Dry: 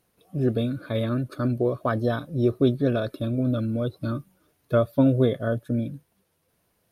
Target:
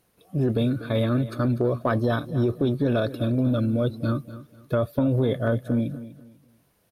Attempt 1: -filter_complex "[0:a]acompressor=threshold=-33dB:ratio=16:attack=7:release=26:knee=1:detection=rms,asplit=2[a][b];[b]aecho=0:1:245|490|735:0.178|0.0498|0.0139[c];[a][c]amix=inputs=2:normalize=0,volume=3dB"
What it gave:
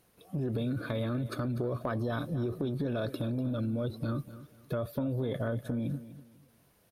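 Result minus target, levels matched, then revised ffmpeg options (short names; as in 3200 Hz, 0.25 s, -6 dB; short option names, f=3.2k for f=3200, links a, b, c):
compressor: peak gain reduction +10.5 dB
-filter_complex "[0:a]acompressor=threshold=-22dB:ratio=16:attack=7:release=26:knee=1:detection=rms,asplit=2[a][b];[b]aecho=0:1:245|490|735:0.178|0.0498|0.0139[c];[a][c]amix=inputs=2:normalize=0,volume=3dB"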